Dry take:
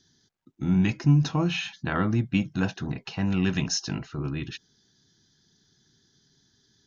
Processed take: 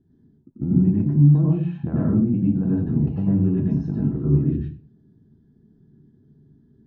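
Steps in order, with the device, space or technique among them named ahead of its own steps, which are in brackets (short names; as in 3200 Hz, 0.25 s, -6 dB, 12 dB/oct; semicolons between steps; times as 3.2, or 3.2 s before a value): television next door (compressor 5:1, threshold -29 dBFS, peak gain reduction 13 dB; LPF 380 Hz 12 dB/oct; reverb RT60 0.40 s, pre-delay 86 ms, DRR -5 dB); gain +7.5 dB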